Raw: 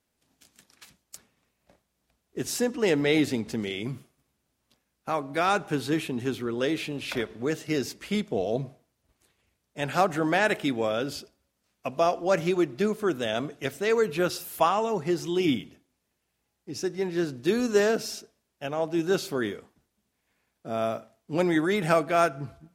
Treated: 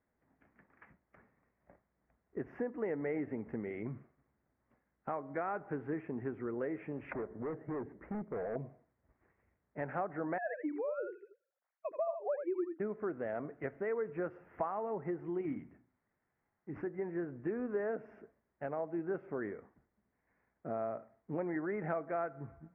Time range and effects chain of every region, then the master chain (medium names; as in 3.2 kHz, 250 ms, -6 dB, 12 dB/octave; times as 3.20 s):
7.13–8.56 s: low-pass 1.1 kHz + hard clipper -30 dBFS
10.38–12.80 s: formants replaced by sine waves + delay 82 ms -8.5 dB
15.41–16.87 s: peaking EQ 480 Hz -5.5 dB 0.83 oct + hum notches 60/120/180/240/300 Hz + decimation joined by straight lines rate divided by 4×
whole clip: elliptic low-pass 2 kHz, stop band 50 dB; dynamic bell 560 Hz, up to +4 dB, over -36 dBFS, Q 0.84; compression 3:1, threshold -37 dBFS; trim -1.5 dB